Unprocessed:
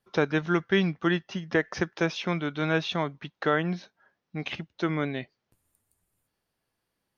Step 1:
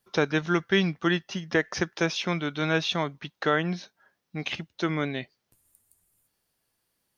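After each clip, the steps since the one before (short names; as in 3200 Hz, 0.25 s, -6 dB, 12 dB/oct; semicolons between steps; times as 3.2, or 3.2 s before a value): high shelf 4400 Hz +11 dB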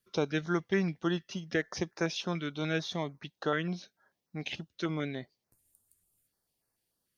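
stepped notch 6.8 Hz 810–3200 Hz; gain -5 dB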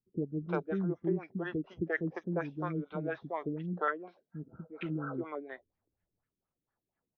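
three bands offset in time lows, mids, highs 0.35/0.4 s, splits 380/4600 Hz; spectral repair 4.4–5.16, 490–1600 Hz both; LFO low-pass sine 4.2 Hz 300–1800 Hz; gain -2.5 dB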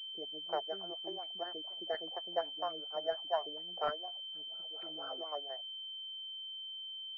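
resonant high-pass 690 Hz, resonance Q 5.4; pulse-width modulation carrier 3100 Hz; gain -6 dB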